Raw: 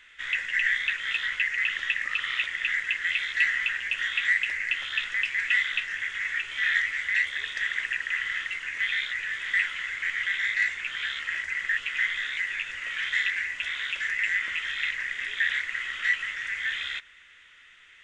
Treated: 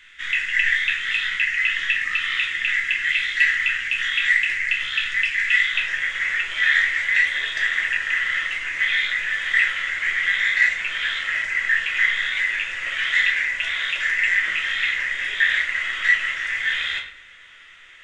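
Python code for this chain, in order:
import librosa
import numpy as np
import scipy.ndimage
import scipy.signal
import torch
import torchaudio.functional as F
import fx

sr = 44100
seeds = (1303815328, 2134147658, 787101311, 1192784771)

y = fx.peak_eq(x, sr, hz=680.0, db=fx.steps((0.0, -13.0), (5.75, 4.0)), octaves=0.94)
y = fx.room_shoebox(y, sr, seeds[0], volume_m3=93.0, walls='mixed', distance_m=0.68)
y = y * 10.0 ** (4.5 / 20.0)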